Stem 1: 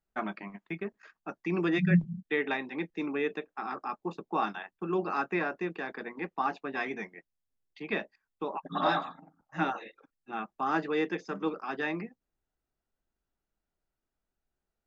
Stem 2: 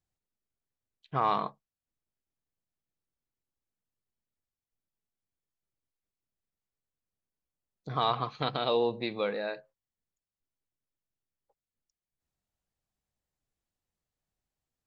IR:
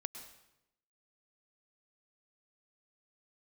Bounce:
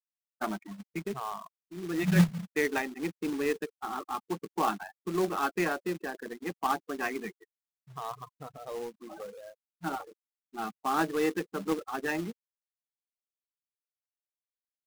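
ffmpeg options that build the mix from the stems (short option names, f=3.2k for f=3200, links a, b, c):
-filter_complex "[0:a]acrusher=bits=9:dc=4:mix=0:aa=0.000001,adelay=250,volume=1.5dB[a];[1:a]equalizer=f=1.4k:w=0.91:g=2.5,volume=-10.5dB,asplit=2[b][c];[c]apad=whole_len=666579[d];[a][d]sidechaincompress=threshold=-56dB:ratio=16:attack=12:release=447[e];[e][b]amix=inputs=2:normalize=0,afftfilt=real='re*gte(hypot(re,im),0.0282)':imag='im*gte(hypot(re,im),0.0282)':win_size=1024:overlap=0.75,adynamicsmooth=sensitivity=4:basefreq=1.1k,acrusher=bits=3:mode=log:mix=0:aa=0.000001"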